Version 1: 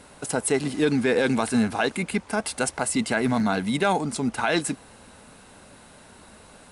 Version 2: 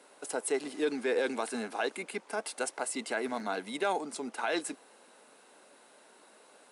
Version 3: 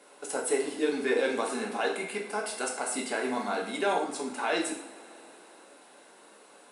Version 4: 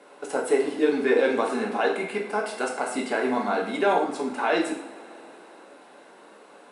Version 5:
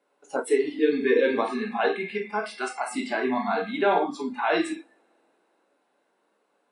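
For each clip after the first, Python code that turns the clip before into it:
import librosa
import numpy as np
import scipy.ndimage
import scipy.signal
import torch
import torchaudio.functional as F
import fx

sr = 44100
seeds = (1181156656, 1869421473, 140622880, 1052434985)

y1 = fx.ladder_highpass(x, sr, hz=280.0, resonance_pct=25)
y1 = y1 * 10.0 ** (-3.0 / 20.0)
y2 = fx.rev_double_slope(y1, sr, seeds[0], early_s=0.58, late_s=4.5, knee_db=-22, drr_db=-1.5)
y3 = fx.lowpass(y2, sr, hz=2100.0, slope=6)
y3 = y3 * 10.0 ** (6.5 / 20.0)
y4 = fx.noise_reduce_blind(y3, sr, reduce_db=21)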